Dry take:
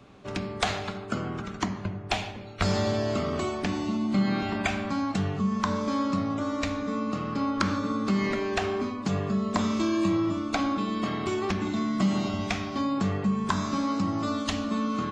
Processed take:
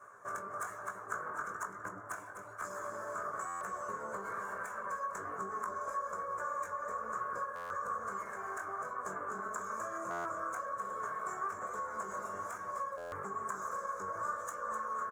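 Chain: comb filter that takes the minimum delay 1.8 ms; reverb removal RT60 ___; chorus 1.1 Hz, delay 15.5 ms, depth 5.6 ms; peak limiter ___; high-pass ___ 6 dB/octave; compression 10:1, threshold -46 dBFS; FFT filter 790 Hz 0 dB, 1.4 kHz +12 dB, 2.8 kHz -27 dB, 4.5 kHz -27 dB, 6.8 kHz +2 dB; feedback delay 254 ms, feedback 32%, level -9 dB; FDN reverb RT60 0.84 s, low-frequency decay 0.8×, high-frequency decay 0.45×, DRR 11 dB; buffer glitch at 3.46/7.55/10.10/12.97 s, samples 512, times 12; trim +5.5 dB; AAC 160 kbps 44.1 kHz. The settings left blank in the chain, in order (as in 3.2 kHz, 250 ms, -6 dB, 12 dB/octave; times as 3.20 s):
0.54 s, -25 dBFS, 1.2 kHz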